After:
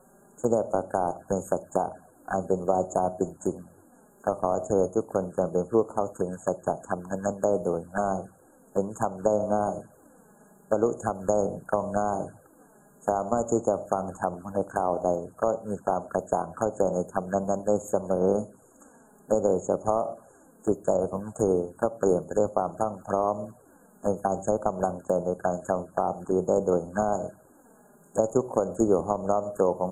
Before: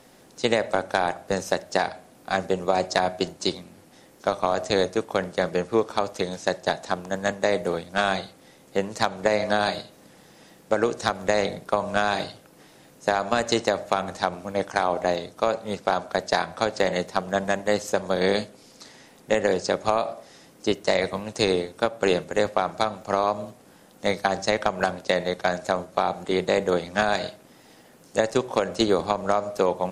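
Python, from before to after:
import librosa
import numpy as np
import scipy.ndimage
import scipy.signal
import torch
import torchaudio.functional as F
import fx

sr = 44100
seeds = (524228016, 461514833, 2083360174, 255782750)

y = fx.env_flanger(x, sr, rest_ms=5.7, full_db=-22.5)
y = fx.brickwall_bandstop(y, sr, low_hz=1700.0, high_hz=6500.0)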